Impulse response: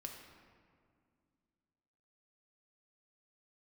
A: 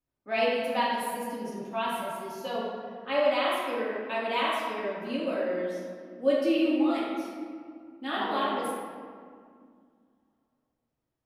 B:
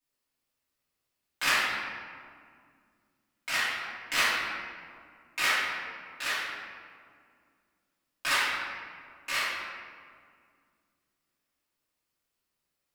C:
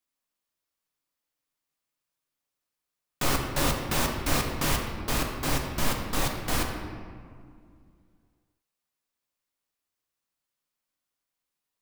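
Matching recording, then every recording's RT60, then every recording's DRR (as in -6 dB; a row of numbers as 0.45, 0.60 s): C; 2.1, 2.1, 2.1 s; -8.5, -13.5, 1.5 dB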